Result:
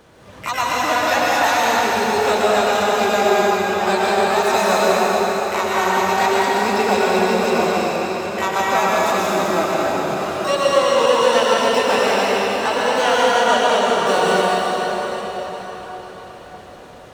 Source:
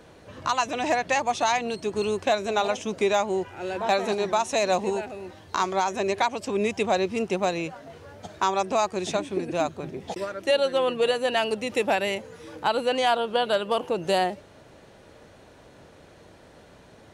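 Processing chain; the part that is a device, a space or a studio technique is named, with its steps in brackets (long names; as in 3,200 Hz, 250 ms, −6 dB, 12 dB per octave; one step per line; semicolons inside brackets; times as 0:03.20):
shimmer-style reverb (pitch-shifted copies added +12 semitones −6 dB; convolution reverb RT60 5.1 s, pre-delay 105 ms, DRR −7 dB)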